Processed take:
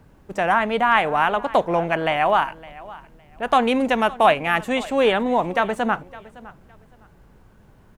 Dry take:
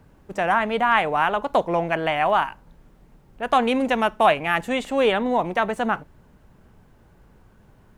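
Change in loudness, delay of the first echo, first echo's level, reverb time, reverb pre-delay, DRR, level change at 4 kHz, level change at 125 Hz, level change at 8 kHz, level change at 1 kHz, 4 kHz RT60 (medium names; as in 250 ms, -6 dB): +1.5 dB, 561 ms, -20.0 dB, no reverb, no reverb, no reverb, +1.5 dB, +1.5 dB, +1.5 dB, +1.5 dB, no reverb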